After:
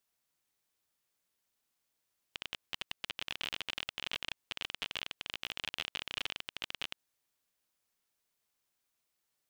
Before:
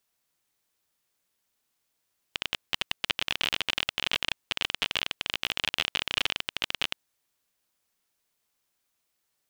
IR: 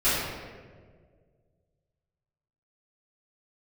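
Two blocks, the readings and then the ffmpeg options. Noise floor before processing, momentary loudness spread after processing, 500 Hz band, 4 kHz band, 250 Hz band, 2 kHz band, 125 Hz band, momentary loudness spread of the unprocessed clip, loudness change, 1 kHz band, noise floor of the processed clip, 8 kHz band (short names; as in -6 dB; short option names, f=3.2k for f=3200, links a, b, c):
-78 dBFS, 5 LU, -10.5 dB, -10.5 dB, -10.5 dB, -10.5 dB, -10.5 dB, 6 LU, -10.5 dB, -10.5 dB, under -85 dBFS, -10.5 dB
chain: -af "alimiter=limit=-14.5dB:level=0:latency=1:release=88,volume=-5dB"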